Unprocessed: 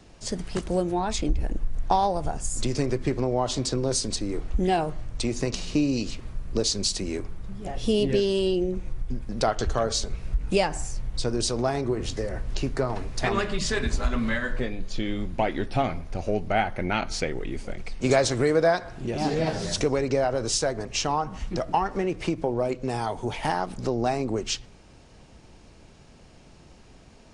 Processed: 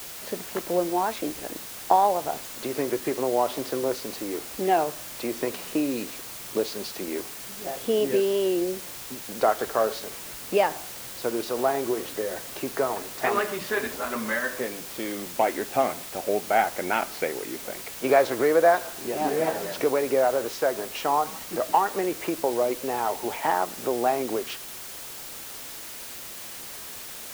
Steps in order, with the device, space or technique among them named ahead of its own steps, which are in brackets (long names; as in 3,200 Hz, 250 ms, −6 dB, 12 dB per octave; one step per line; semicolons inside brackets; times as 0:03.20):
wax cylinder (band-pass filter 380–2,000 Hz; tape wow and flutter; white noise bed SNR 12 dB)
level +3.5 dB